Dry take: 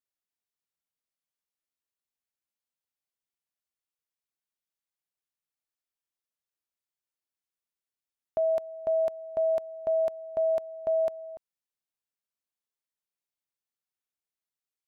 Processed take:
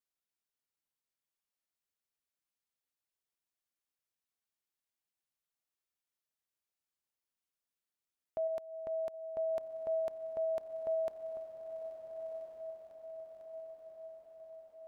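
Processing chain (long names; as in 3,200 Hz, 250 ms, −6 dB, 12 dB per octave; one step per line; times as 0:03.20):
dynamic equaliser 650 Hz, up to −3 dB, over −34 dBFS, Q 2.4
0:08.47–0:09.14: downward compressor 2 to 1, threshold −37 dBFS, peak gain reduction 6 dB
brickwall limiter −28 dBFS, peak gain reduction 6.5 dB
feedback delay with all-pass diffusion 1,341 ms, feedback 58%, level −8.5 dB
level −2 dB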